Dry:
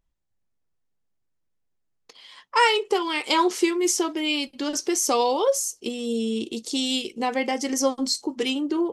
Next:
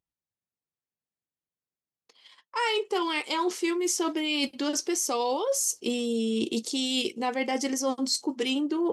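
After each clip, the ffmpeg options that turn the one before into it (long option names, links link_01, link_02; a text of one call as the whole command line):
ffmpeg -i in.wav -af "highpass=98,agate=range=-18dB:threshold=-44dB:ratio=16:detection=peak,areverse,acompressor=threshold=-32dB:ratio=10,areverse,volume=7.5dB" out.wav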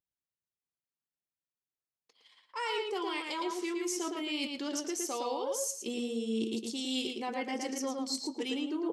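ffmpeg -i in.wav -filter_complex "[0:a]asplit=2[link_01][link_02];[link_02]adelay=112,lowpass=frequency=4300:poles=1,volume=-3dB,asplit=2[link_03][link_04];[link_04]adelay=112,lowpass=frequency=4300:poles=1,volume=0.17,asplit=2[link_05][link_06];[link_06]adelay=112,lowpass=frequency=4300:poles=1,volume=0.17[link_07];[link_01][link_03][link_05][link_07]amix=inputs=4:normalize=0,volume=-8.5dB" out.wav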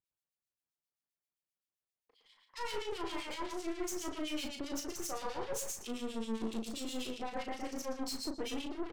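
ffmpeg -i in.wav -filter_complex "[0:a]aeval=exprs='(tanh(89.1*val(0)+0.8)-tanh(0.8))/89.1':channel_layout=same,acrossover=split=1900[link_01][link_02];[link_01]aeval=exprs='val(0)*(1-1/2+1/2*cos(2*PI*7.6*n/s))':channel_layout=same[link_03];[link_02]aeval=exprs='val(0)*(1-1/2-1/2*cos(2*PI*7.6*n/s))':channel_layout=same[link_04];[link_03][link_04]amix=inputs=2:normalize=0,asplit=2[link_05][link_06];[link_06]adelay=36,volume=-6dB[link_07];[link_05][link_07]amix=inputs=2:normalize=0,volume=5.5dB" out.wav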